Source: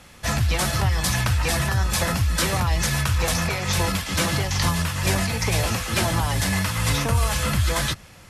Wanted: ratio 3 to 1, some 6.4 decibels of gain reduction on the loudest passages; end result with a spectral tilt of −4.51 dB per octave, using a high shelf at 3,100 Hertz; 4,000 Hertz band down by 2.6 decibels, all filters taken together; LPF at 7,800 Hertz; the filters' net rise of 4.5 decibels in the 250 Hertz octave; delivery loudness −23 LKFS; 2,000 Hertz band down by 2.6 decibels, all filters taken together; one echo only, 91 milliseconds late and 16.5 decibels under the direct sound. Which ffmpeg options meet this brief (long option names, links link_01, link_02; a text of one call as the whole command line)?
ffmpeg -i in.wav -af "lowpass=7800,equalizer=frequency=250:width_type=o:gain=7,equalizer=frequency=2000:width_type=o:gain=-3.5,highshelf=frequency=3100:gain=5.5,equalizer=frequency=4000:width_type=o:gain=-6.5,acompressor=threshold=-25dB:ratio=3,aecho=1:1:91:0.15,volume=4.5dB" out.wav